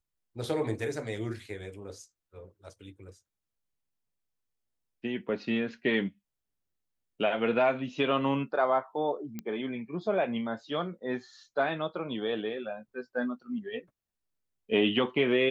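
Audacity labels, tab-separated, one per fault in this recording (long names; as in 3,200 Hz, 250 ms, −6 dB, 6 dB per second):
9.390000	9.390000	click −23 dBFS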